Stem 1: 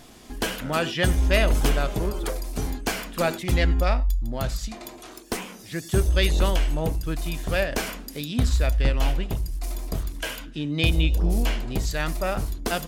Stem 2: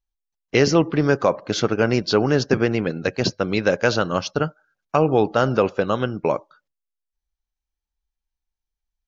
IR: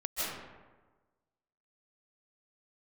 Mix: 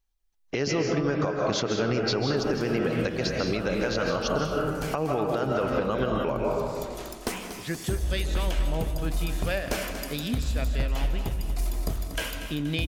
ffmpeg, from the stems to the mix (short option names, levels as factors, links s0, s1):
-filter_complex "[0:a]acompressor=threshold=0.0398:ratio=2,adelay=1950,volume=0.944,asplit=3[s0][s1][s2];[s1]volume=0.2[s3];[s2]volume=0.355[s4];[1:a]acompressor=threshold=0.126:ratio=6,volume=1.33,asplit=3[s5][s6][s7];[s6]volume=0.631[s8];[s7]apad=whole_len=653564[s9];[s0][s9]sidechaincompress=threshold=0.0141:ratio=8:attack=16:release=447[s10];[2:a]atrim=start_sample=2205[s11];[s3][s8]amix=inputs=2:normalize=0[s12];[s12][s11]afir=irnorm=-1:irlink=0[s13];[s4]aecho=0:1:238|476|714|952|1190|1428|1666|1904:1|0.52|0.27|0.141|0.0731|0.038|0.0198|0.0103[s14];[s10][s5][s13][s14]amix=inputs=4:normalize=0,alimiter=limit=0.158:level=0:latency=1:release=392"